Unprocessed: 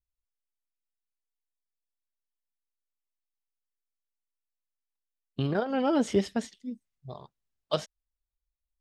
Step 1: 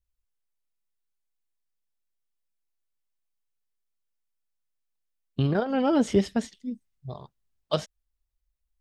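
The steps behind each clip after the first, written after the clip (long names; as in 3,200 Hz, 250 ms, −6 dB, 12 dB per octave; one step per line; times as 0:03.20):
low-shelf EQ 160 Hz +7.5 dB
level +1.5 dB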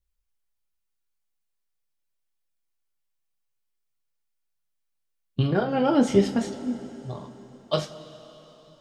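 phase shifter 1.5 Hz, delay 3.7 ms, feedback 22%
coupled-rooms reverb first 0.23 s, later 4.2 s, from −20 dB, DRR 2 dB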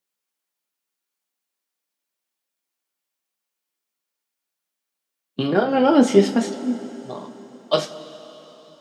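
high-pass filter 200 Hz 24 dB per octave
level +6 dB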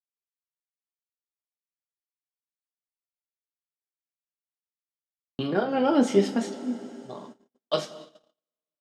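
noise gate −37 dBFS, range −44 dB
level −6.5 dB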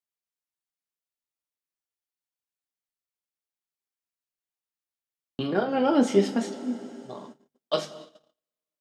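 mains-hum notches 50/100/150 Hz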